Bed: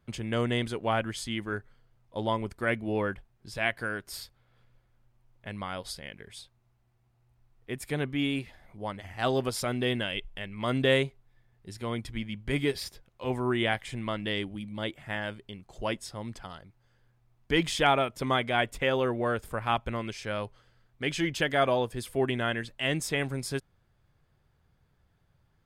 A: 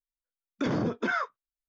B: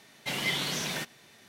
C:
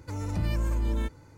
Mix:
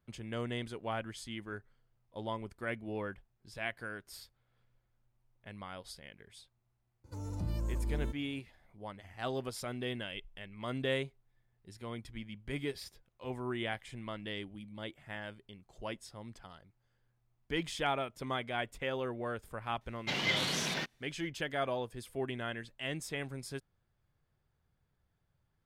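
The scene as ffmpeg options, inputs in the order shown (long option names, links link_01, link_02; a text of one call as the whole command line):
ffmpeg -i bed.wav -i cue0.wav -i cue1.wav -i cue2.wav -filter_complex "[0:a]volume=-9.5dB[link_01];[3:a]equalizer=frequency=2000:width_type=o:width=1.1:gain=-11[link_02];[2:a]afwtdn=0.00708[link_03];[link_02]atrim=end=1.37,asetpts=PTS-STARTPTS,volume=-7.5dB,afade=type=in:duration=0.004:curve=hsin,afade=type=out:start_time=1.366:duration=0.004:curve=hsin,adelay=7040[link_04];[link_03]atrim=end=1.48,asetpts=PTS-STARTPTS,volume=-1.5dB,afade=type=in:duration=0.004:curve=hsin,afade=type=out:start_time=1.476:duration=0.004:curve=hsin,adelay=19810[link_05];[link_01][link_04][link_05]amix=inputs=3:normalize=0" out.wav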